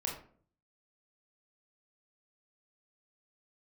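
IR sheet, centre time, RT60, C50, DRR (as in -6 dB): 31 ms, 0.50 s, 5.5 dB, -1.5 dB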